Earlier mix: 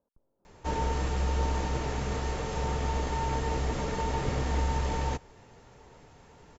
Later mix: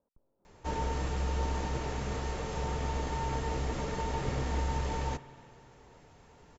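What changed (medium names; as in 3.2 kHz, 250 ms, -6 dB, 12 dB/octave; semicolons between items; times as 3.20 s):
background -4.0 dB; reverb: on, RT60 2.4 s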